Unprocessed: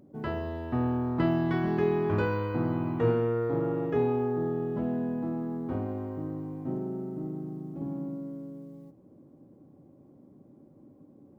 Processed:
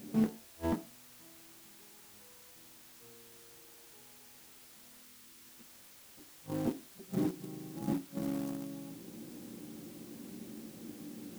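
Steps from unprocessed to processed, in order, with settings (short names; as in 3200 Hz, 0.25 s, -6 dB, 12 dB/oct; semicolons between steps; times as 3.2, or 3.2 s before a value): 7.38–7.88 resonator 120 Hz, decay 0.23 s, harmonics odd, mix 70%; flipped gate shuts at -27 dBFS, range -42 dB; on a send at -2 dB: reverb RT60 0.40 s, pre-delay 3 ms; on the sum: added noise white -58 dBFS; 5.03–5.49 bell 660 Hz -14.5 dB 0.46 oct; in parallel at -12 dB: bit-crush 6-bit; on the sum: gain +1 dB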